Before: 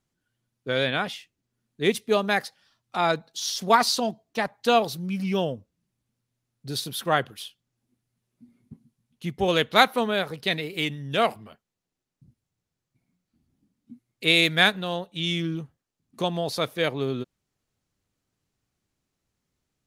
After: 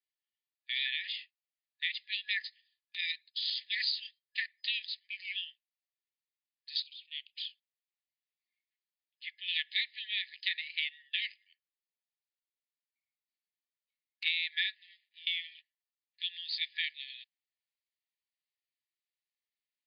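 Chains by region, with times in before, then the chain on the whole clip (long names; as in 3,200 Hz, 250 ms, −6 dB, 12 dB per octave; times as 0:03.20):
0:06.82–0:07.37: elliptic high-pass filter 2,500 Hz + de-essing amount 95% + high-frequency loss of the air 130 metres
0:14.74–0:15.27: one scale factor per block 3 bits + downward compressor 8 to 1, threshold −40 dBFS + spectral tilt −3.5 dB per octave
whole clip: brick-wall band-pass 1,700–5,000 Hz; noise gate −53 dBFS, range −10 dB; downward compressor 6 to 1, threshold −29 dBFS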